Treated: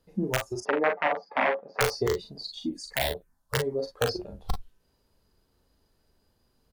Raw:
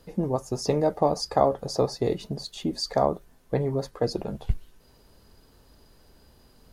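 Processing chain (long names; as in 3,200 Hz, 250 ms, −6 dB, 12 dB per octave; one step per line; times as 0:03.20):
wrap-around overflow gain 14.5 dB
noise reduction from a noise print of the clip's start 14 dB
0:00.60–0:01.81: elliptic band-pass filter 200–2,300 Hz, stop band 60 dB
0:02.59–0:03.55: phaser swept by the level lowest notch 320 Hz, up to 1,200 Hz, full sweep at −24 dBFS
on a send: ambience of single reflections 39 ms −6 dB, 50 ms −11 dB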